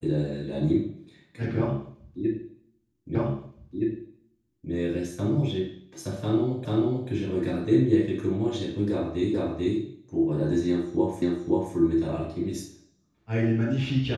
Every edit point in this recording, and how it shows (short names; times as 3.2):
3.15 repeat of the last 1.57 s
6.65 repeat of the last 0.44 s
9.34 repeat of the last 0.44 s
11.22 repeat of the last 0.53 s